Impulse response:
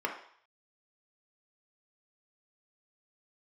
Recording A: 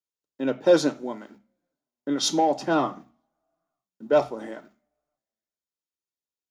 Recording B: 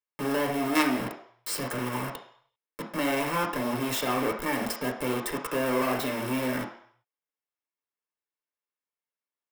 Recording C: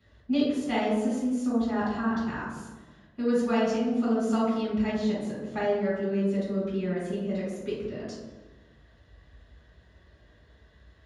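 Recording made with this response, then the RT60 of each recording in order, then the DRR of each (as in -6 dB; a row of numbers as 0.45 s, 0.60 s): B; 0.40 s, 0.60 s, 1.2 s; 10.0 dB, 0.5 dB, -10.0 dB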